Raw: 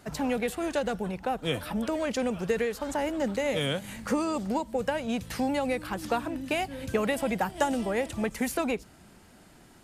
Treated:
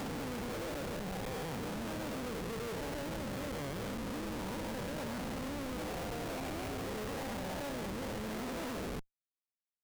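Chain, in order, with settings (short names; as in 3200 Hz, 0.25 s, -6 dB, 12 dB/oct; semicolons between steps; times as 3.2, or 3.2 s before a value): spectral dilation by 0.48 s; compressor 8:1, threshold -35 dBFS, peak gain reduction 19.5 dB; Schmitt trigger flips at -36.5 dBFS; gain -1.5 dB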